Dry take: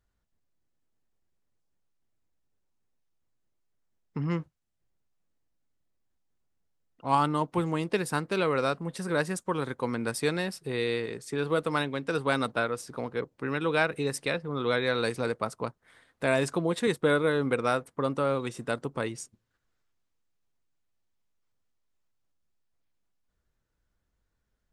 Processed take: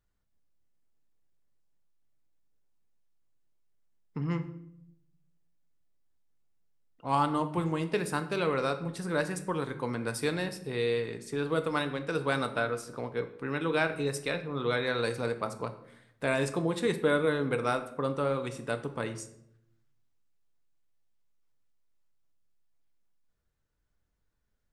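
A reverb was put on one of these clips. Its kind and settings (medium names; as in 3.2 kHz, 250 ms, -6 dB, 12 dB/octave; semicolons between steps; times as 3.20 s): simulated room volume 170 m³, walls mixed, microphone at 0.38 m; trim -3 dB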